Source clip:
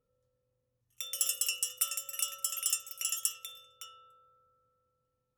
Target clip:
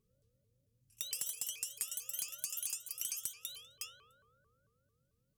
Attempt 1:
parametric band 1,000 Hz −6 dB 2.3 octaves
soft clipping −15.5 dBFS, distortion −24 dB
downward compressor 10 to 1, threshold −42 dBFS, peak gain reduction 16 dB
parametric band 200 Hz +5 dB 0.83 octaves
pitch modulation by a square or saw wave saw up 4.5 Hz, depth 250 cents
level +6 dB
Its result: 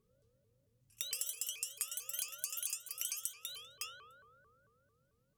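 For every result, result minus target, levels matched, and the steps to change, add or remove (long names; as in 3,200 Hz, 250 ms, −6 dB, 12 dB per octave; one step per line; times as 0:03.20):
soft clipping: distortion −11 dB; 1,000 Hz band +6.5 dB
change: soft clipping −24.5 dBFS, distortion −12 dB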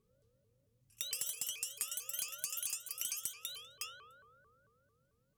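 1,000 Hz band +7.0 dB
change: first parametric band 1,000 Hz −16 dB 2.3 octaves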